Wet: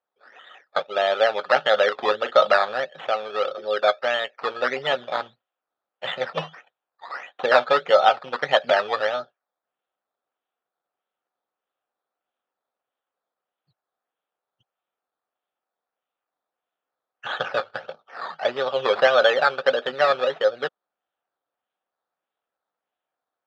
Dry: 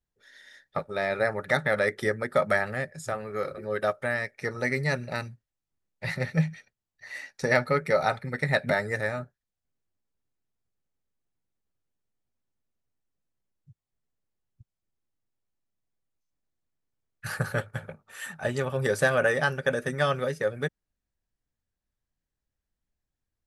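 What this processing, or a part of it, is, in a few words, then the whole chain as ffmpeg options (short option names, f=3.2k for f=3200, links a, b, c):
circuit-bent sampling toy: -filter_complex "[0:a]asettb=1/sr,asplit=3[a][b][c];[a]atrim=end=1.834[d];[b]atrim=start=1.83:end=2.53,asetpts=PTS-STARTPTS,afade=t=in:d=0.004:c=qsin,afade=t=out:st=0.696:d=0.004:c=qsin,asplit=2[e][f];[f]adelay=38,volume=-10dB[g];[e][g]amix=inputs=2:normalize=0,atrim=end_sample=30870[h];[c]atrim=start=2.526[i];[d][h]acrossfade=d=0.004:c1=hsin:c2=qsin[j];[j][i]acrossfade=d=0.004:c1=qsin:c2=hsin,acrusher=samples=12:mix=1:aa=0.000001:lfo=1:lforange=7.2:lforate=1.6,highpass=460,equalizer=f=520:t=q:w=4:g=5,equalizer=f=740:t=q:w=4:g=8,equalizer=f=1.3k:t=q:w=4:g=6,equalizer=f=2.1k:t=q:w=4:g=-5,equalizer=f=3.4k:t=q:w=4:g=6,lowpass=f=4k:w=0.5412,lowpass=f=4k:w=1.3066,volume=4dB"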